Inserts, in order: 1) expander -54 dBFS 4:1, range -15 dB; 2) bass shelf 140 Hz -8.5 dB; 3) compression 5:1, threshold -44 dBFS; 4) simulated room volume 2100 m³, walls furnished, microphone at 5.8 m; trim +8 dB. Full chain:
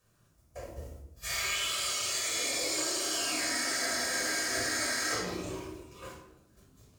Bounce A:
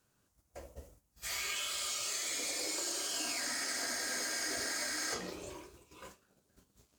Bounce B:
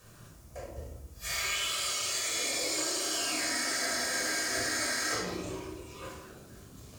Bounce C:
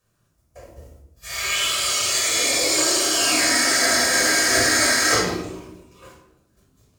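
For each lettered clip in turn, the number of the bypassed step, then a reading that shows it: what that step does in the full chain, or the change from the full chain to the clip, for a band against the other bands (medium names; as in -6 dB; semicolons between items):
4, echo-to-direct 2.0 dB to none; 1, momentary loudness spread change -1 LU; 3, mean gain reduction 9.5 dB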